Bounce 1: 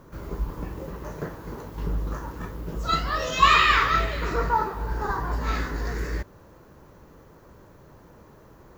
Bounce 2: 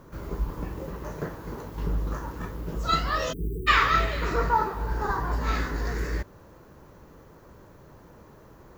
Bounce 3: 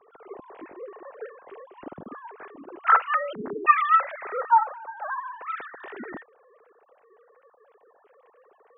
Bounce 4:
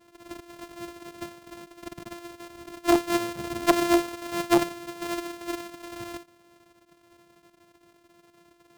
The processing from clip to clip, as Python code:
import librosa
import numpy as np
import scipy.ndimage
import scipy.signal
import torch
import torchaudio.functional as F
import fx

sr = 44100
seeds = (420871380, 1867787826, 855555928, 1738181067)

y1 = fx.spec_erase(x, sr, start_s=3.33, length_s=0.35, low_hz=470.0, high_hz=8000.0)
y2 = fx.sine_speech(y1, sr)
y3 = np.r_[np.sort(y2[:len(y2) // 128 * 128].reshape(-1, 128), axis=1).ravel(), y2[len(y2) // 128 * 128:]]
y3 = fx.transformer_sat(y3, sr, knee_hz=750.0)